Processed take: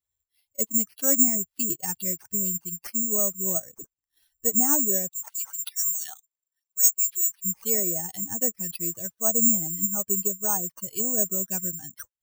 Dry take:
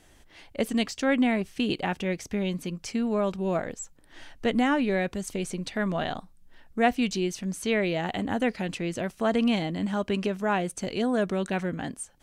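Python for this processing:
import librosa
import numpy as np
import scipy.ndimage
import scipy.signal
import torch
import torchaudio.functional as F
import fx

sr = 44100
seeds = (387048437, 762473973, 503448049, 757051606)

y = fx.bin_expand(x, sr, power=2.0)
y = scipy.signal.sosfilt(scipy.signal.butter(2, 96.0, 'highpass', fs=sr, output='sos'), y)
y = fx.env_lowpass_down(y, sr, base_hz=1100.0, full_db=-28.0)
y = (np.kron(y[::6], np.eye(6)[0]) * 6)[:len(y)]
y = fx.filter_lfo_highpass(y, sr, shape='sine', hz=4.7, low_hz=920.0, high_hz=4900.0, q=2.2, at=(5.08, 7.44), fade=0.02)
y = y * 10.0 ** (-1.5 / 20.0)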